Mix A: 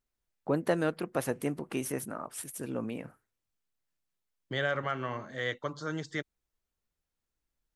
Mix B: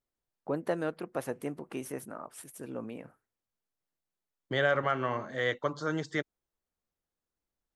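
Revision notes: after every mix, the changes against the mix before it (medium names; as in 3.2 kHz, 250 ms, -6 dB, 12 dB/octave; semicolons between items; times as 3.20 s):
first voice -7.5 dB; master: add peaking EQ 660 Hz +5 dB 3 oct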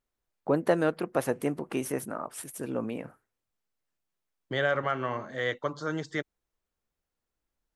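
first voice +7.0 dB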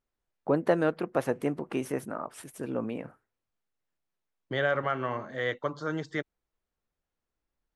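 master: add treble shelf 6.8 kHz -11.5 dB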